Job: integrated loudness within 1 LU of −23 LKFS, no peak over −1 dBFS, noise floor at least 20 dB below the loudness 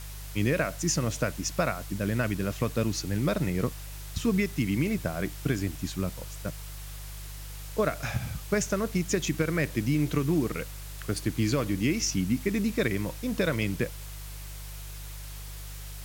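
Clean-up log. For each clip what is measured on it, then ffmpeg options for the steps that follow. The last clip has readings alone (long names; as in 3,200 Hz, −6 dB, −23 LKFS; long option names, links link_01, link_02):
mains hum 50 Hz; hum harmonics up to 150 Hz; level of the hum −38 dBFS; background noise floor −40 dBFS; target noise floor −50 dBFS; integrated loudness −29.5 LKFS; sample peak −13.0 dBFS; target loudness −23.0 LKFS
→ -af "bandreject=frequency=50:width_type=h:width=4,bandreject=frequency=100:width_type=h:width=4,bandreject=frequency=150:width_type=h:width=4"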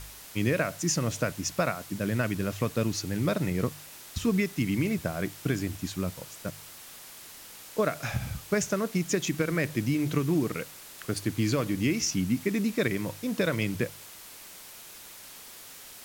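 mains hum none found; background noise floor −47 dBFS; target noise floor −50 dBFS
→ -af "afftdn=noise_reduction=6:noise_floor=-47"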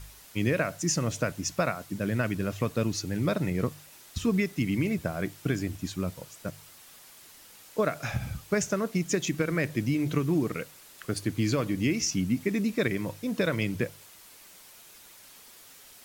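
background noise floor −52 dBFS; integrated loudness −29.5 LKFS; sample peak −13.0 dBFS; target loudness −23.0 LKFS
→ -af "volume=6.5dB"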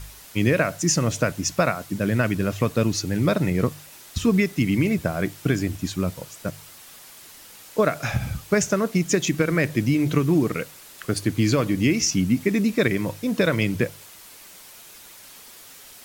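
integrated loudness −23.0 LKFS; sample peak −6.5 dBFS; background noise floor −46 dBFS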